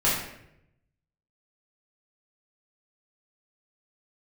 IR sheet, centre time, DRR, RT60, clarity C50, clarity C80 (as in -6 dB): 54 ms, -8.5 dB, 0.80 s, 2.0 dB, 5.5 dB